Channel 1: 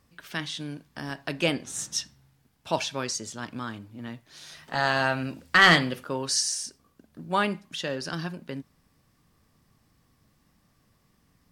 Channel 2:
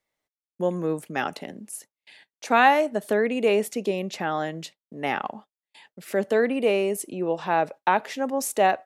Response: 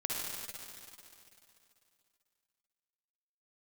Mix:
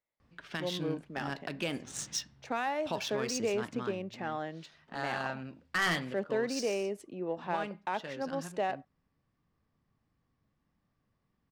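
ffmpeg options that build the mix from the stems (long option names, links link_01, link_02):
-filter_complex "[0:a]asoftclip=type=hard:threshold=-11dB,adelay=200,volume=-1.5dB,afade=type=out:start_time=3.45:duration=0.71:silence=0.316228[link_01];[1:a]volume=-9.5dB[link_02];[link_01][link_02]amix=inputs=2:normalize=0,adynamicsmooth=sensitivity=8:basefreq=3600,alimiter=limit=-22dB:level=0:latency=1:release=198"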